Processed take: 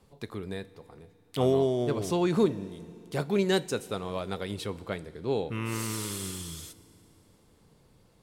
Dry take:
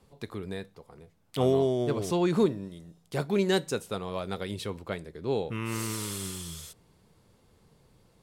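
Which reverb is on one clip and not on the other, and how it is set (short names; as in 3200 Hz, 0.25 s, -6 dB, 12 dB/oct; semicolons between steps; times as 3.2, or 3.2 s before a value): FDN reverb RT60 3 s, low-frequency decay 1.25×, high-frequency decay 1×, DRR 18 dB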